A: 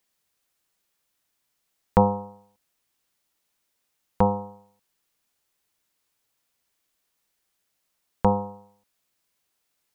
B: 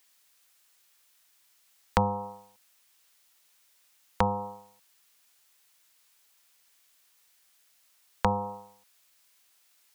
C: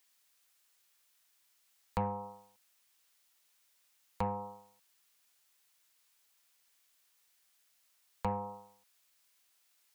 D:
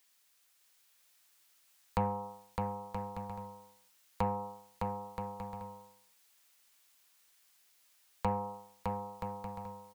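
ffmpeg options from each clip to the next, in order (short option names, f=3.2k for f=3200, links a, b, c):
-filter_complex "[0:a]tiltshelf=f=640:g=-7.5,acrossover=split=160[a][b];[b]acompressor=threshold=-28dB:ratio=4[c];[a][c]amix=inputs=2:normalize=0,volume=3.5dB"
-af "asoftclip=type=tanh:threshold=-18dB,volume=-6.5dB"
-af "aecho=1:1:610|976|1196|1327|1406:0.631|0.398|0.251|0.158|0.1,volume=2dB"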